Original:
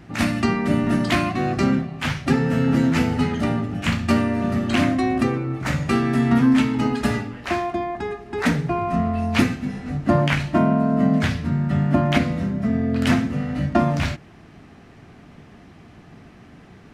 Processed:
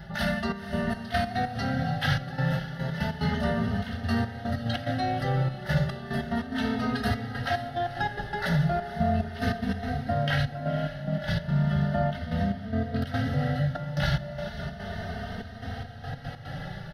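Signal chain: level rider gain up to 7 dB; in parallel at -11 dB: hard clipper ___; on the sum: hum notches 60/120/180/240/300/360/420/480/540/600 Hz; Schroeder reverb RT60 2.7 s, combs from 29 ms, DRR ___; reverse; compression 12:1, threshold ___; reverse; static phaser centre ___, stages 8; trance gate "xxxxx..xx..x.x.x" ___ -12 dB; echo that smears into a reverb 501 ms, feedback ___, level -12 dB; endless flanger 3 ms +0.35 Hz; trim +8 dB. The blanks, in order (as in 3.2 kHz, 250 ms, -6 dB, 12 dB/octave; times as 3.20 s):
-19 dBFS, 13.5 dB, -24 dBFS, 1.6 kHz, 145 bpm, 63%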